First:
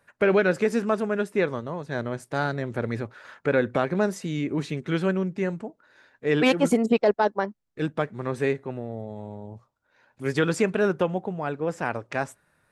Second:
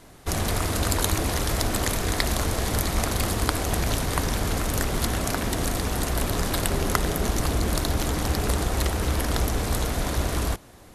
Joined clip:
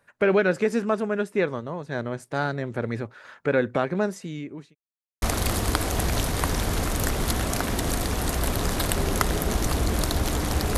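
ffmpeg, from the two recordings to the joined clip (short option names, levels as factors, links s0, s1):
-filter_complex "[0:a]apad=whole_dur=10.77,atrim=end=10.77,asplit=2[s0][s1];[s0]atrim=end=4.75,asetpts=PTS-STARTPTS,afade=t=out:st=3.65:d=1.1:c=qsin[s2];[s1]atrim=start=4.75:end=5.22,asetpts=PTS-STARTPTS,volume=0[s3];[1:a]atrim=start=2.96:end=8.51,asetpts=PTS-STARTPTS,afade=t=in:d=0.004:c=hsin[s4];[s2][s3][s4]concat=n=3:v=0:a=1"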